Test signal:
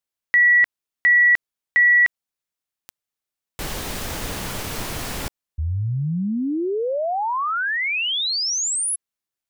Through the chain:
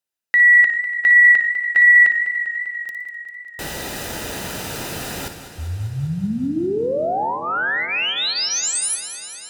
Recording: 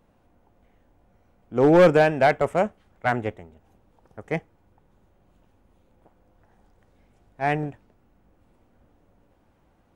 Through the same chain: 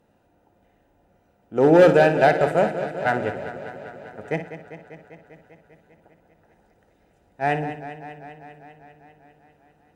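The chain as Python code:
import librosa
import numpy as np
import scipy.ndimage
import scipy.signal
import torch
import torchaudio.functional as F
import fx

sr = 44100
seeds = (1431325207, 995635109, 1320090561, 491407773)

p1 = fx.hum_notches(x, sr, base_hz=60, count=5)
p2 = fx.notch_comb(p1, sr, f0_hz=1100.0)
p3 = p2 + fx.room_flutter(p2, sr, wall_m=9.9, rt60_s=0.33, dry=0)
p4 = fx.cheby_harmonics(p3, sr, harmonics=(6,), levels_db=(-44,), full_scale_db=-6.5)
p5 = fx.echo_warbled(p4, sr, ms=198, feedback_pct=74, rate_hz=2.8, cents=55, wet_db=-12)
y = p5 * librosa.db_to_amplitude(1.5)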